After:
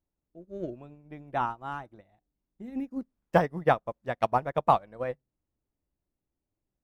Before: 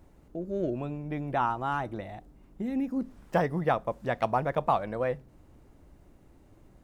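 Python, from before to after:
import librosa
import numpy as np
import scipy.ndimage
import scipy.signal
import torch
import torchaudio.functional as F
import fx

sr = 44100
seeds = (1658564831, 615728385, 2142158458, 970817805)

y = fx.upward_expand(x, sr, threshold_db=-45.0, expansion=2.5)
y = F.gain(torch.from_numpy(y), 5.5).numpy()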